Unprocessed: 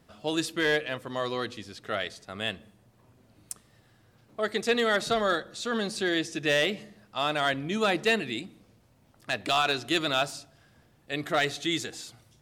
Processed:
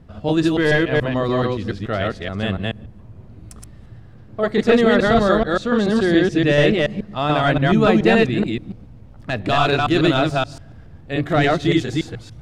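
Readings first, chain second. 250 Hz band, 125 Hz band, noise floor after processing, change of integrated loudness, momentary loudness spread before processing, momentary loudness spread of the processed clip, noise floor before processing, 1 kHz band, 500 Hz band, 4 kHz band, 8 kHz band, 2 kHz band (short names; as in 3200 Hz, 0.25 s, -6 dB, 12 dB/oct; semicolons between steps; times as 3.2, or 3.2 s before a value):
+15.0 dB, +19.5 dB, -42 dBFS, +10.0 dB, 17 LU, 11 LU, -62 dBFS, +9.0 dB, +11.5 dB, +3.5 dB, n/a, +7.0 dB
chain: reverse delay 0.143 s, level 0 dB; RIAA curve playback; gain +6 dB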